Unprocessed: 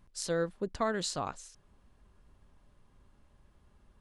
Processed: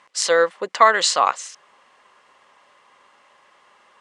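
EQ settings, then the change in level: speaker cabinet 450–8200 Hz, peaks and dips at 520 Hz +7 dB, 770 Hz +3 dB, 1100 Hz +4 dB, 2000 Hz +10 dB, 2900 Hz +6 dB; bell 1100 Hz +7.5 dB 1.1 oct; high shelf 2200 Hz +9 dB; +8.5 dB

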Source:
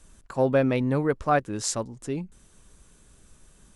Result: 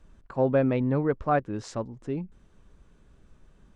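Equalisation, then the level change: tape spacing loss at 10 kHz 26 dB; 0.0 dB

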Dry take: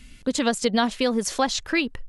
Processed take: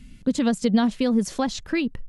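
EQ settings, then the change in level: bell 180 Hz +8 dB 1.2 oct; low shelf 410 Hz +7.5 dB; -6.5 dB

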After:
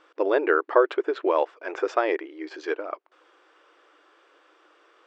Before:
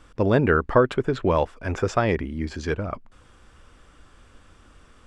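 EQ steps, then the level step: brick-wall FIR high-pass 300 Hz; air absorption 150 m; 0.0 dB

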